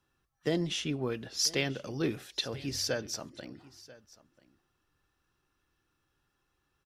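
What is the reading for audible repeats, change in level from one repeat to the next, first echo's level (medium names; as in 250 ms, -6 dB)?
1, no regular repeats, -20.5 dB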